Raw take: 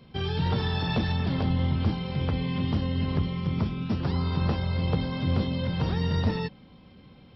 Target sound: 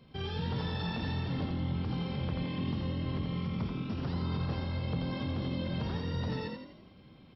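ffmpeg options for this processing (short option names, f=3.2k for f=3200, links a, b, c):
-filter_complex "[0:a]alimiter=limit=-22dB:level=0:latency=1,asplit=2[a][b];[b]asplit=6[c][d][e][f][g][h];[c]adelay=84,afreqshift=42,volume=-5dB[i];[d]adelay=168,afreqshift=84,volume=-11.6dB[j];[e]adelay=252,afreqshift=126,volume=-18.1dB[k];[f]adelay=336,afreqshift=168,volume=-24.7dB[l];[g]adelay=420,afreqshift=210,volume=-31.2dB[m];[h]adelay=504,afreqshift=252,volume=-37.8dB[n];[i][j][k][l][m][n]amix=inputs=6:normalize=0[o];[a][o]amix=inputs=2:normalize=0,volume=-5.5dB"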